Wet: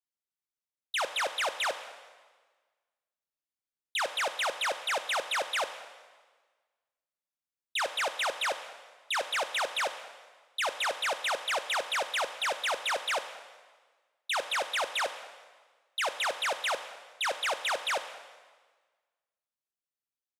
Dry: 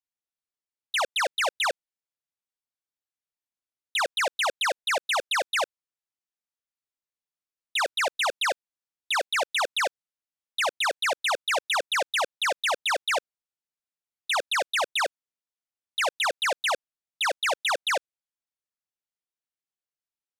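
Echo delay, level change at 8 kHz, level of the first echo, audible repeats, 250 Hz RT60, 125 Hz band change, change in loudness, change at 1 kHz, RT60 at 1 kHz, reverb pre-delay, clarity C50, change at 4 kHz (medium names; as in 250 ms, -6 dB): 207 ms, -4.5 dB, -23.0 dB, 1, 1.4 s, no reading, -4.5 dB, -4.5 dB, 1.4 s, 5 ms, 11.0 dB, -4.5 dB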